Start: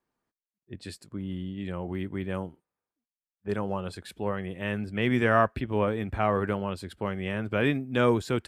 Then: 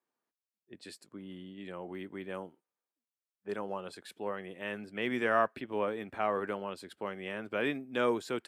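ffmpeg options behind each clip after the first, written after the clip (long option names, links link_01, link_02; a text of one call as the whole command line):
ffmpeg -i in.wav -af "highpass=280,volume=-5dB" out.wav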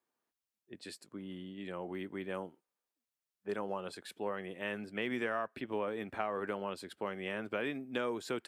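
ffmpeg -i in.wav -af "acompressor=threshold=-32dB:ratio=12,volume=1dB" out.wav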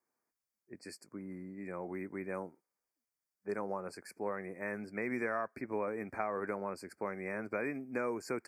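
ffmpeg -i in.wav -af "asuperstop=centerf=3300:order=20:qfactor=1.7" out.wav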